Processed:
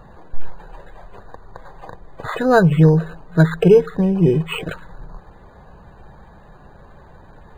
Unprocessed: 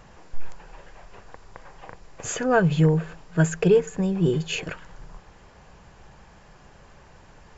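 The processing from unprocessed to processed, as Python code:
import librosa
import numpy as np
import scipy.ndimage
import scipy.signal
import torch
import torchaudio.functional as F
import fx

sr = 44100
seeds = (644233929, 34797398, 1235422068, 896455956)

y = fx.spec_topn(x, sr, count=64)
y = np.interp(np.arange(len(y)), np.arange(len(y))[::8], y[::8])
y = y * 10.0 ** (7.0 / 20.0)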